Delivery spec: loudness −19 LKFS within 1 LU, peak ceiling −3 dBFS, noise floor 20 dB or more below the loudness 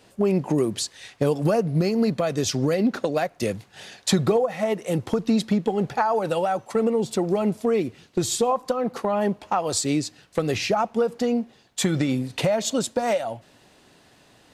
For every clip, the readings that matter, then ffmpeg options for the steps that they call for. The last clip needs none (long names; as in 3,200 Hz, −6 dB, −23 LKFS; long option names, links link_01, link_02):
integrated loudness −24.0 LKFS; sample peak −8.5 dBFS; target loudness −19.0 LKFS
→ -af "volume=5dB"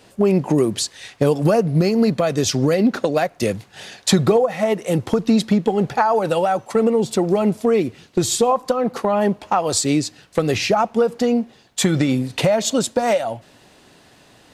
integrated loudness −19.0 LKFS; sample peak −3.5 dBFS; background noise floor −51 dBFS